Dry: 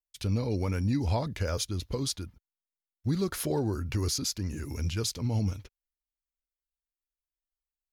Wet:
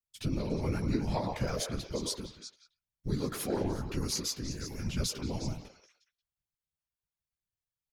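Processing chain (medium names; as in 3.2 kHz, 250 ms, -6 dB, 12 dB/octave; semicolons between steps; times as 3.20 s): speakerphone echo 180 ms, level -9 dB; chorus voices 4, 0.53 Hz, delay 14 ms, depth 4.4 ms; on a send: repeats whose band climbs or falls 119 ms, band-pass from 740 Hz, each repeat 1.4 oct, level -3.5 dB; on the sum: whisper effect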